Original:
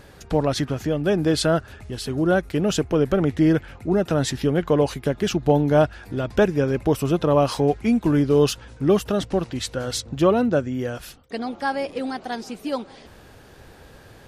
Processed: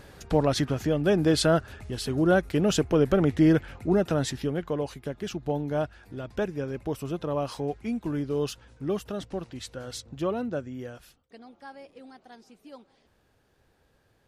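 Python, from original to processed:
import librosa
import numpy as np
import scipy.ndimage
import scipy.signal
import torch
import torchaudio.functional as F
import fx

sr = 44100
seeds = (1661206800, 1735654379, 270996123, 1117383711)

y = fx.gain(x, sr, db=fx.line((3.91, -2.0), (4.79, -11.0), (10.83, -11.0), (11.4, -20.0)))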